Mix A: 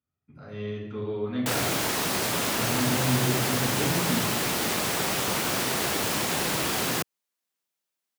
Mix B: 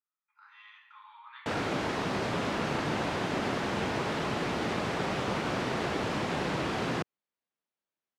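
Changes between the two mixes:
speech: add brick-wall FIR high-pass 820 Hz; master: add tape spacing loss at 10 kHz 26 dB

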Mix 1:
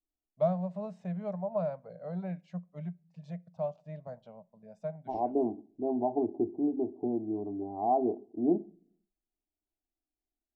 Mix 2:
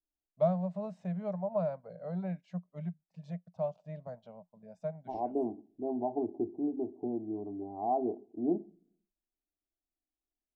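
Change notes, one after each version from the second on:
first voice: send off; second voice -3.5 dB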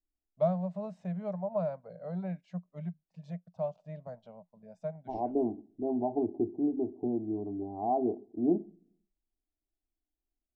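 second voice: add tilt -2 dB/oct

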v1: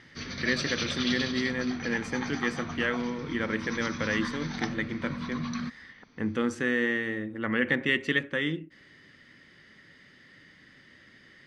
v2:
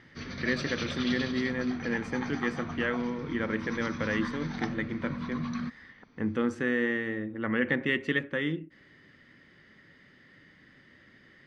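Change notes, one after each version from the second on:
master: add high shelf 3100 Hz -10 dB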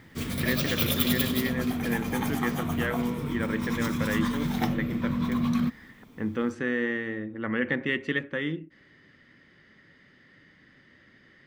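background: remove rippled Chebyshev low-pass 6200 Hz, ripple 9 dB

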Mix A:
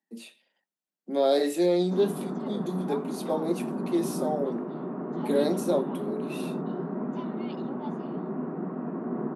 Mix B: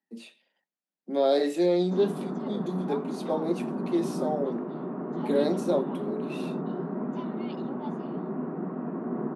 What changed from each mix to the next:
speech: add air absorption 55 m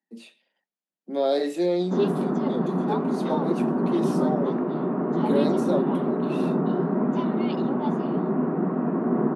background +8.5 dB

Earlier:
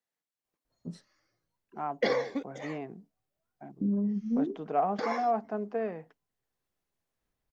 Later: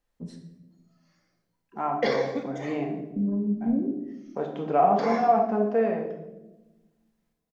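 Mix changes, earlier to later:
first voice: entry -0.65 s; second voice +3.5 dB; reverb: on, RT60 1.0 s

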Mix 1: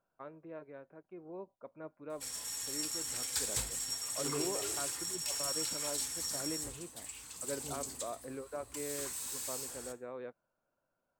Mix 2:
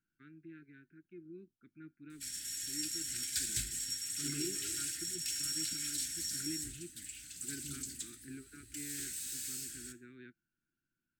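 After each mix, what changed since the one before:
master: add Chebyshev band-stop 350–1500 Hz, order 4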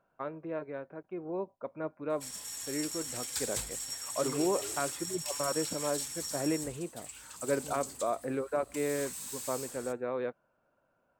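first voice +10.0 dB; background: send -10.0 dB; master: remove Chebyshev band-stop 350–1500 Hz, order 4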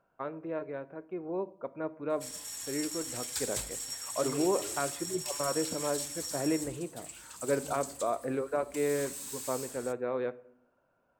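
first voice: send on

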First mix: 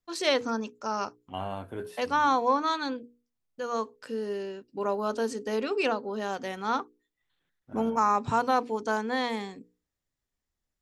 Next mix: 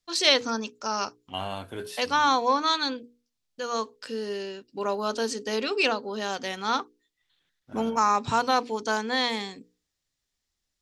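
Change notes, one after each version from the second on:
second voice: add high shelf 4200 Hz +6 dB; master: add bell 4400 Hz +11 dB 2 oct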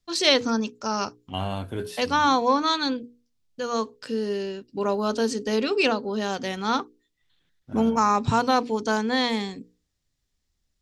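master: add low shelf 320 Hz +11.5 dB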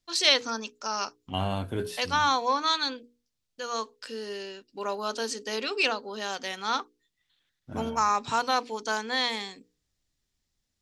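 first voice: add HPF 1100 Hz 6 dB/oct

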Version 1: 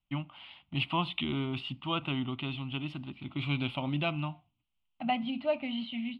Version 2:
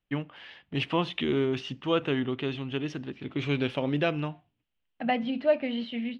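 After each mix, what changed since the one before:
master: remove fixed phaser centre 1700 Hz, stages 6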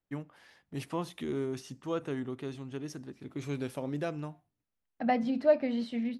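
first voice -7.0 dB; master: remove synth low-pass 3000 Hz, resonance Q 3.9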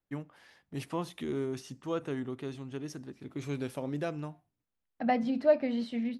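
none

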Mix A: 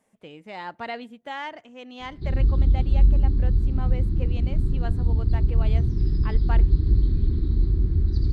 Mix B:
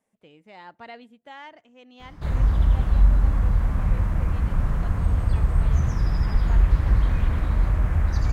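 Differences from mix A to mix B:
speech -8.5 dB; background: remove EQ curve 210 Hz 0 dB, 380 Hz +7 dB, 570 Hz -26 dB, 1300 Hz -23 dB, 2700 Hz -22 dB, 4300 Hz +3 dB, 6500 Hz -23 dB

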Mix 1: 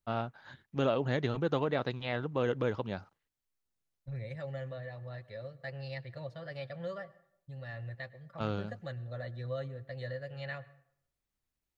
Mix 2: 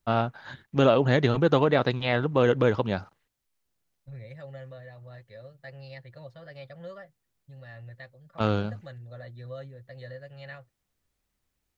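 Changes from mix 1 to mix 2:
first voice +9.5 dB; reverb: off

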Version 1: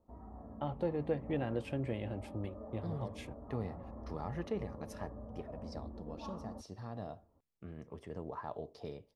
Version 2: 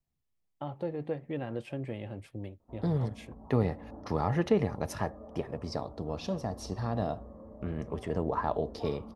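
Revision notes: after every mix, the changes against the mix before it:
second voice +12.0 dB; background: entry +2.60 s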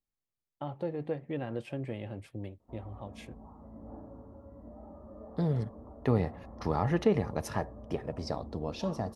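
second voice: entry +2.55 s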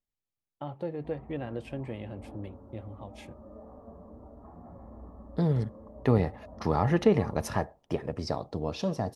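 second voice +3.5 dB; background: entry -1.65 s

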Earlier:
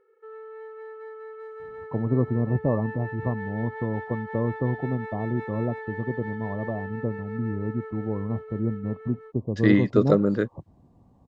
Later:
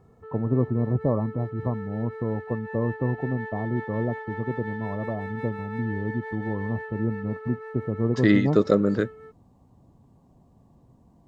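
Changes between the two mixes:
first voice: entry -1.60 s; second voice: entry -1.40 s; master: add high shelf 4900 Hz +8.5 dB

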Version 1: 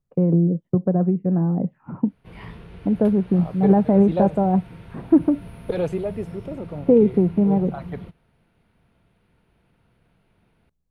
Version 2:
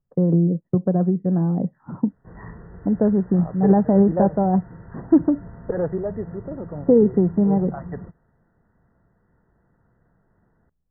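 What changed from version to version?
master: add brick-wall FIR low-pass 2000 Hz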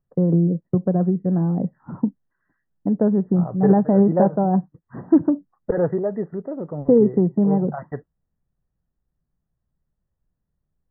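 second voice +3.5 dB; background: muted

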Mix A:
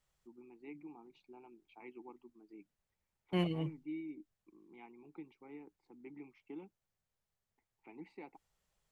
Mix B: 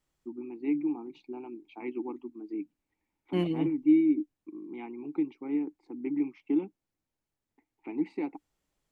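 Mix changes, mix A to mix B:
first voice +10.0 dB; master: add bell 290 Hz +13 dB 0.63 oct

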